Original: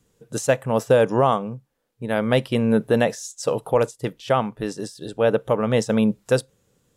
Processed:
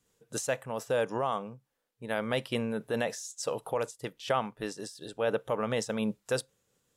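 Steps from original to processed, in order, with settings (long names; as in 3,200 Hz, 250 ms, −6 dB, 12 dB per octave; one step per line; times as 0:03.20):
brickwall limiter −11.5 dBFS, peak gain reduction 4.5 dB
low-shelf EQ 480 Hz −9 dB
amplitude modulation by smooth noise, depth 55%
level −2 dB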